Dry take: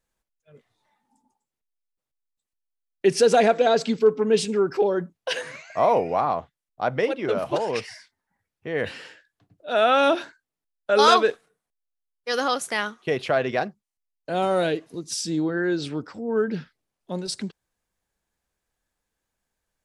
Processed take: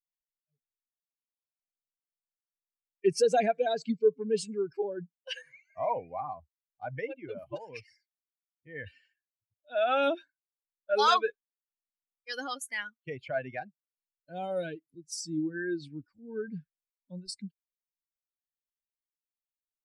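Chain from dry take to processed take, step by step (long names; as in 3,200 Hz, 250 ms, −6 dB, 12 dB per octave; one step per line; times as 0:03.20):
spectral dynamics exaggerated over time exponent 2
level −4.5 dB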